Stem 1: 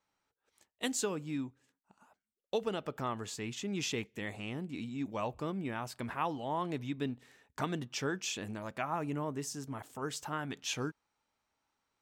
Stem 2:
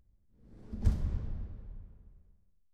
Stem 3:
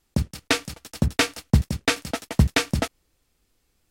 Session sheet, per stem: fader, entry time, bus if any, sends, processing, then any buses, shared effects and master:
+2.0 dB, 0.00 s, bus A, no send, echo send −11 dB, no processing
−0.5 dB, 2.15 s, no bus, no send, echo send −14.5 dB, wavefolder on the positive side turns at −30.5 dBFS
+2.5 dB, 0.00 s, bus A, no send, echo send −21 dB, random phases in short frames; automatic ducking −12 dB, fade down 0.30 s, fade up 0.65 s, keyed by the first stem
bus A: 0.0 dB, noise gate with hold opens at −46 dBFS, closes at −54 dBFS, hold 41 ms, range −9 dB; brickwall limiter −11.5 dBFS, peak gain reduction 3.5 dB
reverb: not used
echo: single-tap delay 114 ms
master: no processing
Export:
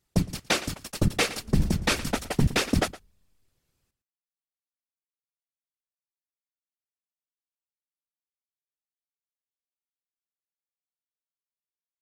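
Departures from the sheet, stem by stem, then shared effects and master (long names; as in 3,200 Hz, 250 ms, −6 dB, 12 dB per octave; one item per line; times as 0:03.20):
stem 1: muted
stem 2: entry 2.15 s → 0.75 s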